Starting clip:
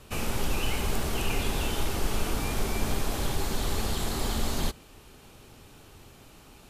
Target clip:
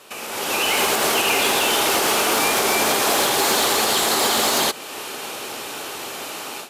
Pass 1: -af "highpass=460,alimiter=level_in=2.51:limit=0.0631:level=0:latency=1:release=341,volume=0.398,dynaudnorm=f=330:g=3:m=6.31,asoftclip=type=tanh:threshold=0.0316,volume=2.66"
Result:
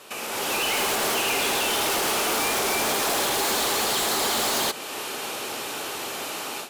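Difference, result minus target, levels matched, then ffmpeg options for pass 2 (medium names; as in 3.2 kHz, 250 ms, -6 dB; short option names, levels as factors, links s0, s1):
saturation: distortion +13 dB
-af "highpass=460,alimiter=level_in=2.51:limit=0.0631:level=0:latency=1:release=341,volume=0.398,dynaudnorm=f=330:g=3:m=6.31,asoftclip=type=tanh:threshold=0.119,volume=2.66"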